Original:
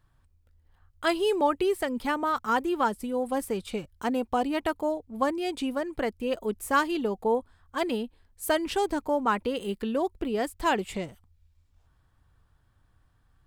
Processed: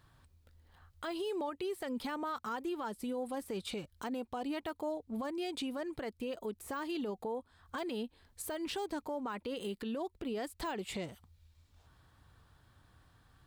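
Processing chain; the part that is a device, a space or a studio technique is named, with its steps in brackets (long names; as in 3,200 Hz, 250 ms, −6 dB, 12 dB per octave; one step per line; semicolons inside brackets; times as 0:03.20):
broadcast voice chain (high-pass filter 99 Hz 6 dB per octave; de-essing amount 85%; downward compressor 3 to 1, threshold −42 dBFS, peak gain reduction 16.5 dB; parametric band 4,000 Hz +4.5 dB 0.6 octaves; brickwall limiter −36 dBFS, peak gain reduction 9 dB)
level +5.5 dB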